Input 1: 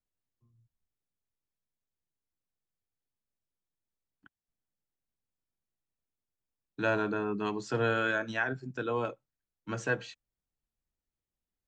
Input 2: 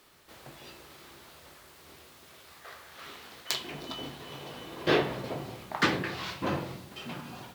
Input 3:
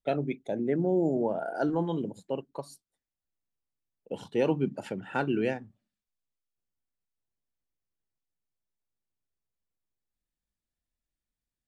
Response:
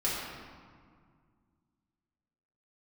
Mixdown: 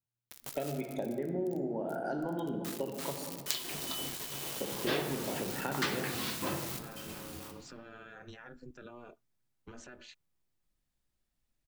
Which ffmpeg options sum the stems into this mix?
-filter_complex "[0:a]acompressor=threshold=0.0224:ratio=6,alimiter=level_in=3.98:limit=0.0631:level=0:latency=1:release=84,volume=0.251,aeval=exprs='val(0)*sin(2*PI*120*n/s)':c=same,volume=0.841,asplit=2[s0][s1];[1:a]acrusher=bits=6:mix=0:aa=0.000001,highshelf=f=4500:g=11.5,volume=0.794,asplit=2[s2][s3];[s3]volume=0.112[s4];[2:a]acompressor=threshold=0.02:ratio=6,adelay=500,volume=1.19,asplit=2[s5][s6];[s6]volume=0.398[s7];[s1]apad=whole_len=332559[s8];[s2][s8]sidechaincompress=threshold=0.001:ratio=4:attack=16:release=400[s9];[3:a]atrim=start_sample=2205[s10];[s4][s7]amix=inputs=2:normalize=0[s11];[s11][s10]afir=irnorm=-1:irlink=0[s12];[s0][s9][s5][s12]amix=inputs=4:normalize=0,acompressor=threshold=0.0178:ratio=2"

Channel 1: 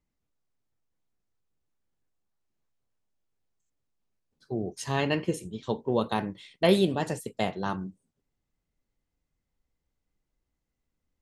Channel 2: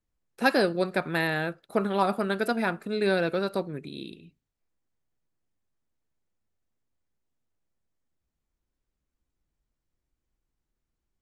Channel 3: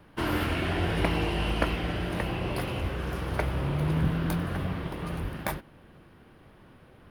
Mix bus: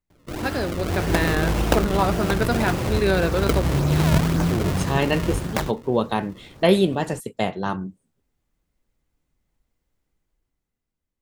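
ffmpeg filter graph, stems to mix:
-filter_complex "[0:a]equalizer=f=5200:w=1.5:g=-4,volume=0.596[s0];[1:a]volume=0.501[s1];[2:a]highshelf=f=2900:g=-10.5,acrusher=samples=32:mix=1:aa=0.000001:lfo=1:lforange=51.2:lforate=1.8,adelay=100,volume=0.794[s2];[s0][s1][s2]amix=inputs=3:normalize=0,dynaudnorm=f=150:g=13:m=3.16"

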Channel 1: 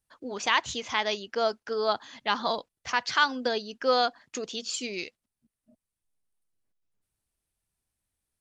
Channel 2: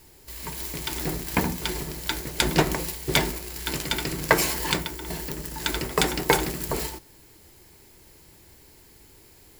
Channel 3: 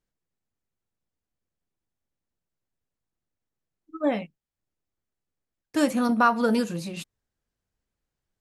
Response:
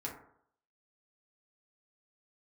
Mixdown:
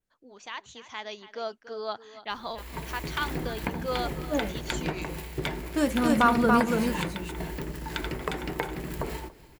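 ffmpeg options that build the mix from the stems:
-filter_complex "[0:a]bandreject=f=5100:w=10,dynaudnorm=f=110:g=17:m=3.76,volume=0.168,asplit=3[s0][s1][s2];[s1]volume=0.178[s3];[1:a]bass=f=250:g=1,treble=f=4000:g=-12,acompressor=threshold=0.0398:ratio=6,adelay=2300,volume=1,asplit=2[s4][s5];[s5]volume=0.0841[s6];[2:a]volume=0.841,asplit=2[s7][s8];[s8]volume=0.708[s9];[s2]apad=whole_len=370536[s10];[s7][s10]sidechaincompress=threshold=0.00631:ratio=8:attack=16:release=1120[s11];[s3][s6][s9]amix=inputs=3:normalize=0,aecho=0:1:284:1[s12];[s0][s4][s11][s12]amix=inputs=4:normalize=0,adynamicequalizer=threshold=0.002:dfrequency=4900:dqfactor=2.1:tfrequency=4900:tqfactor=2.1:attack=5:release=100:ratio=0.375:range=2.5:mode=cutabove:tftype=bell"

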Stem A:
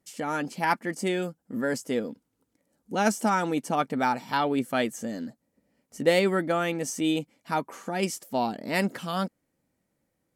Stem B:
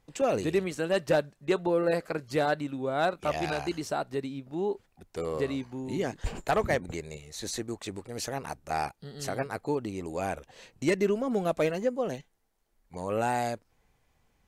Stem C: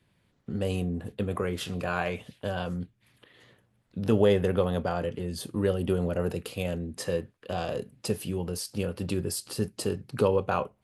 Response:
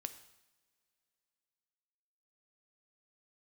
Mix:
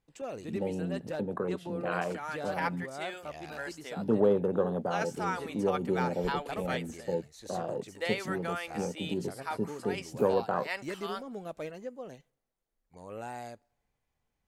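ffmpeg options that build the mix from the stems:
-filter_complex "[0:a]acrossover=split=5100[s0][s1];[s1]acompressor=threshold=0.00447:ratio=4:attack=1:release=60[s2];[s0][s2]amix=inputs=2:normalize=0,highpass=790,adelay=1950,volume=0.422,asplit=2[s3][s4];[s4]volume=0.237[s5];[1:a]volume=0.211,asplit=2[s6][s7];[s7]volume=0.178[s8];[2:a]afwtdn=0.0282,highpass=f=140:w=0.5412,highpass=f=140:w=1.3066,volume=0.75[s9];[3:a]atrim=start_sample=2205[s10];[s5][s8]amix=inputs=2:normalize=0[s11];[s11][s10]afir=irnorm=-1:irlink=0[s12];[s3][s6][s9][s12]amix=inputs=4:normalize=0"

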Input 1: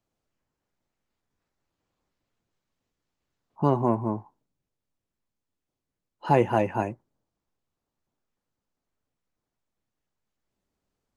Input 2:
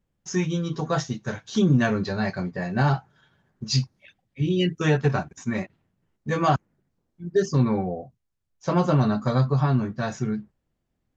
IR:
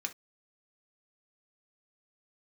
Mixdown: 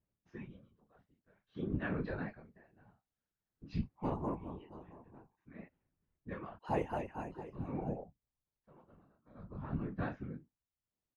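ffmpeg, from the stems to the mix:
-filter_complex "[0:a]adelay=400,volume=0.447,asplit=2[s0][s1];[s1]volume=0.158[s2];[1:a]lowpass=f=2800:w=0.5412,lowpass=f=2800:w=1.3066,flanger=delay=22.5:depth=3.7:speed=0.5,aeval=exprs='val(0)*pow(10,-33*(0.5-0.5*cos(2*PI*0.5*n/s))/20)':c=same,volume=0.944[s3];[s2]aecho=0:1:677:1[s4];[s0][s3][s4]amix=inputs=3:normalize=0,afftfilt=real='hypot(re,im)*cos(2*PI*random(0))':imag='hypot(re,im)*sin(2*PI*random(1))':win_size=512:overlap=0.75,tremolo=f=1.9:d=0.37"

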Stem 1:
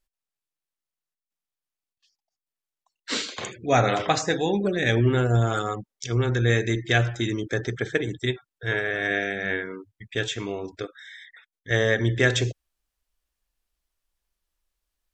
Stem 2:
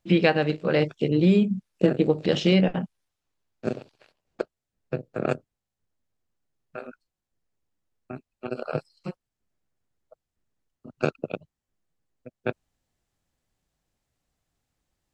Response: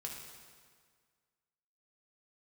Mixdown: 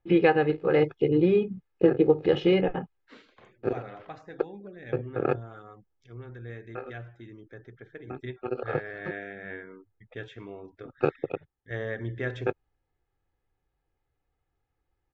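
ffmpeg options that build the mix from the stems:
-filter_complex "[0:a]volume=0.282,afade=t=in:st=7.99:d=0.22:silence=0.375837[s0];[1:a]aecho=1:1:2.4:0.68,volume=0.841[s1];[s0][s1]amix=inputs=2:normalize=0,lowpass=2000"

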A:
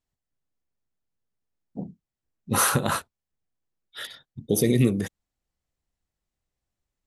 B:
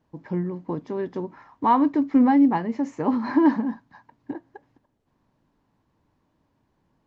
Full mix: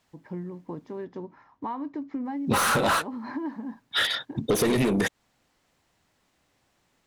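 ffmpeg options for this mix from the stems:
-filter_complex "[0:a]asplit=2[s0][s1];[s1]highpass=f=720:p=1,volume=25.1,asoftclip=type=tanh:threshold=0.447[s2];[s0][s2]amix=inputs=2:normalize=0,lowpass=f=3100:p=1,volume=0.501,volume=1.12,asplit=3[s3][s4][s5];[s3]atrim=end=1.05,asetpts=PTS-STARTPTS,afade=t=out:st=1.046:d=0.004:c=hsin[s6];[s4]atrim=start=1.05:end=2.25,asetpts=PTS-STARTPTS,volume=0[s7];[s5]atrim=start=2.25,asetpts=PTS-STARTPTS,afade=t=in:d=0.004:c=hsin[s8];[s6][s7][s8]concat=n=3:v=0:a=1[s9];[1:a]acompressor=threshold=0.0708:ratio=6,volume=0.447[s10];[s9][s10]amix=inputs=2:normalize=0,acompressor=threshold=0.0794:ratio=4"

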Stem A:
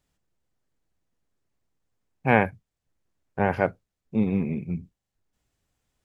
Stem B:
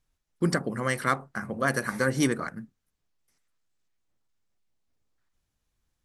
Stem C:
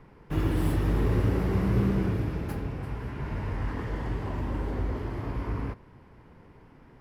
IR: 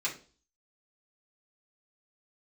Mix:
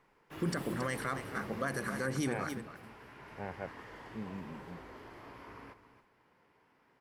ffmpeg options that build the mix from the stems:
-filter_complex "[0:a]volume=0.112[s0];[1:a]volume=0.531,asplit=2[s1][s2];[s2]volume=0.237[s3];[2:a]highpass=f=960:p=1,volume=0.447,asplit=2[s4][s5];[s5]volume=0.251[s6];[s3][s6]amix=inputs=2:normalize=0,aecho=0:1:274:1[s7];[s0][s1][s4][s7]amix=inputs=4:normalize=0,alimiter=limit=0.0668:level=0:latency=1:release=39"

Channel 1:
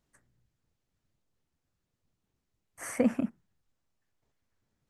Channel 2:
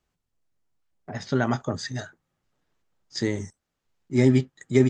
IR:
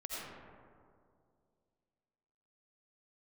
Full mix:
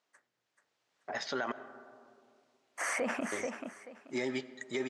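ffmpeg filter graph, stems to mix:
-filter_complex "[0:a]alimiter=limit=0.0708:level=0:latency=1:release=25,volume=1.41,asplit=2[s0][s1];[s1]volume=0.282[s2];[1:a]acompressor=threshold=0.0891:ratio=5,volume=0.398,asplit=3[s3][s4][s5];[s3]atrim=end=1.52,asetpts=PTS-STARTPTS,afade=t=out:st=1.516:d=0.004:c=hsin[s6];[s4]atrim=start=1.52:end=3.32,asetpts=PTS-STARTPTS,volume=0[s7];[s5]atrim=start=3.32,asetpts=PTS-STARTPTS,afade=t=in:d=0.004:c=hsin[s8];[s6][s7][s8]concat=n=3:v=0:a=1,asplit=2[s9][s10];[s10]volume=0.15[s11];[2:a]atrim=start_sample=2205[s12];[s11][s12]afir=irnorm=-1:irlink=0[s13];[s2]aecho=0:1:434|868|1302|1736:1|0.22|0.0484|0.0106[s14];[s0][s9][s13][s14]amix=inputs=4:normalize=0,dynaudnorm=f=310:g=5:m=3.16,highpass=580,lowpass=5700,alimiter=limit=0.0631:level=0:latency=1:release=51"

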